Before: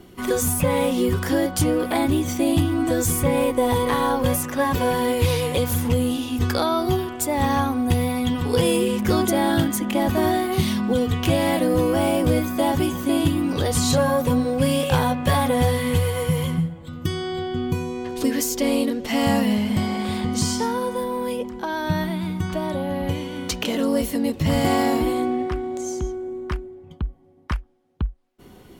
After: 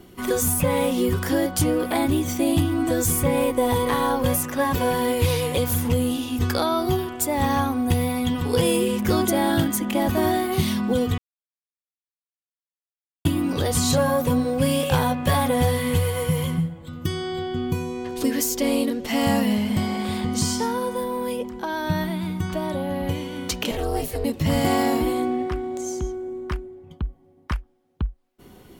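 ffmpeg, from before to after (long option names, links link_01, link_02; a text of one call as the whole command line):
ffmpeg -i in.wav -filter_complex "[0:a]asettb=1/sr,asplit=3[link_01][link_02][link_03];[link_01]atrim=end=23.714[link_04];[link_02]atrim=start=23.71:end=24.25,asetpts=PTS-STARTPTS,afade=type=in:duration=0.004:curve=qsin,afade=type=out:start_time=0.536:duration=0.004:curve=qsin,aeval=exprs='val(0)*sin(2*PI*200*n/s)':channel_layout=same[link_05];[link_03]atrim=start=24.246[link_06];[link_04][link_05]acrossfade=duration=0.004:curve1=hsin:curve2=qsin[link_07];[link_07][link_06]acrossfade=duration=0.004:curve1=qsin:curve2=hsin,asplit=3[link_08][link_09][link_10];[link_08]atrim=end=11.18,asetpts=PTS-STARTPTS,afade=type=out:start_time=11.176:duration=0.004:curve=hsin[link_11];[link_09]atrim=start=11.18:end=13.25,asetpts=PTS-STARTPTS,volume=0[link_12];[link_10]atrim=start=13.25,asetpts=PTS-STARTPTS,afade=type=in:duration=0.004:curve=hsin[link_13];[link_11][link_12][link_13]concat=n=3:v=0:a=1,highshelf=frequency=12000:gain=5.5,volume=-1dB" out.wav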